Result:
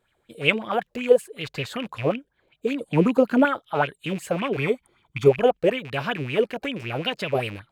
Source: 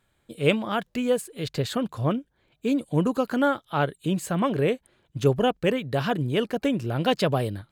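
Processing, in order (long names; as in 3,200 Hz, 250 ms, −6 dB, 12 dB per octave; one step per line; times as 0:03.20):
loose part that buzzes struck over −33 dBFS, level −26 dBFS
0:02.87–0:03.45: parametric band 220 Hz +10 dB 1.2 octaves
0:04.57–0:05.28: comb filter 0.9 ms, depth 68%
0:06.44–0:07.35: downward compressor, threshold −22 dBFS, peak gain reduction 5 dB
auto-filter bell 5.3 Hz 410–3,000 Hz +16 dB
level −5 dB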